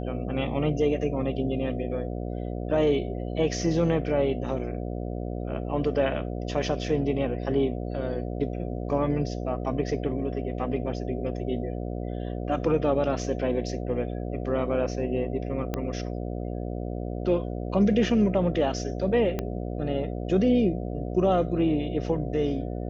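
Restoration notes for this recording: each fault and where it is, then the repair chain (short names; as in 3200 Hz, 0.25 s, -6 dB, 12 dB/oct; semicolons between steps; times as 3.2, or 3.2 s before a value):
buzz 60 Hz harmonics 12 -32 dBFS
15.74 pop -15 dBFS
19.39 pop -15 dBFS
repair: de-click; de-hum 60 Hz, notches 12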